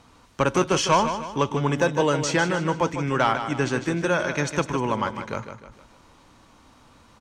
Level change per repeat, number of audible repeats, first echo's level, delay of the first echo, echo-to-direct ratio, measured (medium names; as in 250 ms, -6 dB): -7.5 dB, 4, -9.0 dB, 153 ms, -8.0 dB